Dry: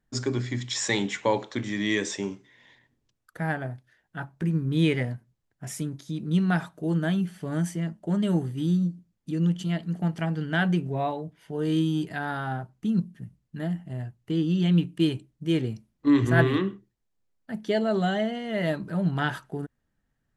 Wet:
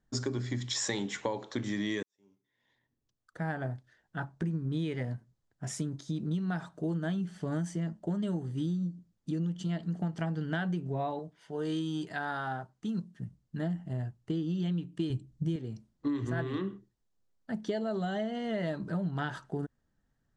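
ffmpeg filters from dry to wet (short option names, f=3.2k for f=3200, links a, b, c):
-filter_complex "[0:a]asettb=1/sr,asplit=3[a][b][c];[a]atrim=end=11.194[d];[b]atrim=start=11.19:end=13.2,asetpts=PTS-STARTPTS,afade=t=in:d=0.004:c=qsin,afade=t=out:st=2.006:d=0.004:c=qsin,lowshelf=f=350:g=-10[e];[c]atrim=start=13.196[f];[d][e]acrossfade=d=0.004:c1=hsin:c2=qsin[g];[g][f]acrossfade=d=0.004:c1=qsin:c2=hsin,asettb=1/sr,asplit=3[h][i][j];[h]atrim=end=15.104[k];[i]atrim=start=15.1:end=15.56,asetpts=PTS-STARTPTS,afade=t=in:d=0.004:c=qsin,afade=t=out:st=0.456:d=0.004:c=qsin,bass=f=250:g=12,treble=f=4k:g=4[l];[j]atrim=start=15.556[m];[k][l]acrossfade=d=0.004:c1=hsin:c2=qsin[n];[n][m]acrossfade=d=0.004:c1=qsin:c2=hsin,asplit=2[o][p];[o]atrim=end=2.03,asetpts=PTS-STARTPTS,afade=t=out:st=2.026:d=0.004:c=hsin[q];[p]atrim=start=2.03,asetpts=PTS-STARTPTS,afade=t=in:d=1.65:c=qua[r];[q][r]concat=n=2:v=0:a=1,lowpass=f=8.3k:w=0.5412,lowpass=f=8.3k:w=1.3066,equalizer=f=2.4k:t=o:w=0.72:g=-6,acompressor=threshold=-29dB:ratio=12"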